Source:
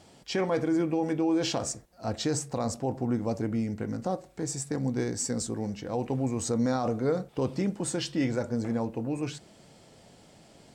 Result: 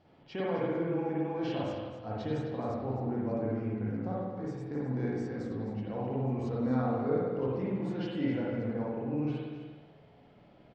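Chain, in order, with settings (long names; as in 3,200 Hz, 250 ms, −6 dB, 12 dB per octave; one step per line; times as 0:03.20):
high-frequency loss of the air 300 metres
on a send: single-tap delay 261 ms −11 dB
on the sum: spring reverb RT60 1.2 s, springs 47/54 ms, chirp 50 ms, DRR −5.5 dB
level −9 dB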